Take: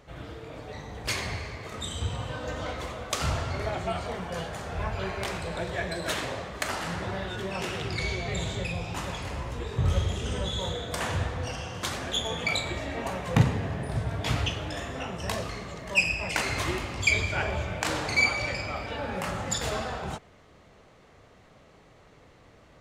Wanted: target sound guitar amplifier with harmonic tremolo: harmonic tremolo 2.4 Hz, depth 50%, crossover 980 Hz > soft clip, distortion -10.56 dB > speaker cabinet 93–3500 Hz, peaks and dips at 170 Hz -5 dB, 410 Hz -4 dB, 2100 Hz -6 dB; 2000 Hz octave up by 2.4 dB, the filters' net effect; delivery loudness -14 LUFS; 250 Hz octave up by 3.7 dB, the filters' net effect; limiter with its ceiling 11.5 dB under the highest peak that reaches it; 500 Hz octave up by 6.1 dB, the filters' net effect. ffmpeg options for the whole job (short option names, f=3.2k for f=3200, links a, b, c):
-filter_complex "[0:a]equalizer=f=250:t=o:g=5.5,equalizer=f=500:t=o:g=7.5,equalizer=f=2k:t=o:g=6.5,alimiter=limit=-16dB:level=0:latency=1,acrossover=split=980[a][b];[a]aeval=exprs='val(0)*(1-0.5/2+0.5/2*cos(2*PI*2.4*n/s))':c=same[c];[b]aeval=exprs='val(0)*(1-0.5/2-0.5/2*cos(2*PI*2.4*n/s))':c=same[d];[c][d]amix=inputs=2:normalize=0,asoftclip=threshold=-29dB,highpass=93,equalizer=f=170:t=q:w=4:g=-5,equalizer=f=410:t=q:w=4:g=-4,equalizer=f=2.1k:t=q:w=4:g=-6,lowpass=f=3.5k:w=0.5412,lowpass=f=3.5k:w=1.3066,volume=22dB"